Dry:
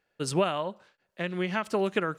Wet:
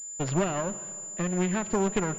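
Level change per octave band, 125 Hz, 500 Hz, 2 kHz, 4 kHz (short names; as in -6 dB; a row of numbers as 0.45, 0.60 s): +5.0, -1.0, -3.0, -6.0 dB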